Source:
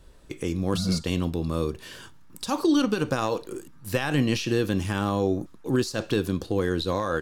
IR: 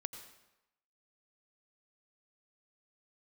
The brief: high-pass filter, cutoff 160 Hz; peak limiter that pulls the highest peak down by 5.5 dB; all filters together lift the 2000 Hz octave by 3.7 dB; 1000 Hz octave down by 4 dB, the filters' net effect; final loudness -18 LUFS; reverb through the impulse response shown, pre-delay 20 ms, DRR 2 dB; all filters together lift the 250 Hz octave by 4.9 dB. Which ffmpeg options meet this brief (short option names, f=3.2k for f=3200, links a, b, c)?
-filter_complex "[0:a]highpass=160,equalizer=f=250:t=o:g=7.5,equalizer=f=1k:t=o:g=-8,equalizer=f=2k:t=o:g=8,alimiter=limit=-14dB:level=0:latency=1,asplit=2[a][b];[1:a]atrim=start_sample=2205,adelay=20[c];[b][c]afir=irnorm=-1:irlink=0,volume=0dB[d];[a][d]amix=inputs=2:normalize=0,volume=5dB"